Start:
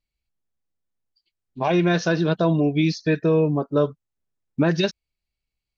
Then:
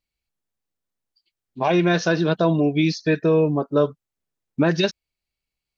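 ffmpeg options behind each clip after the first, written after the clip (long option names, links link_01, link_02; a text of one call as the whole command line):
ffmpeg -i in.wav -af "lowshelf=frequency=120:gain=-7.5,volume=2dB" out.wav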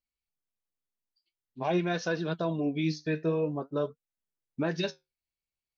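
ffmpeg -i in.wav -af "flanger=delay=3.9:depth=9.4:regen=64:speed=0.49:shape=sinusoidal,volume=-6.5dB" out.wav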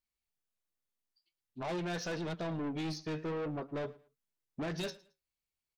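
ffmpeg -i in.wav -af "asoftclip=type=tanh:threshold=-34dB,aecho=1:1:110|220:0.0841|0.0227" out.wav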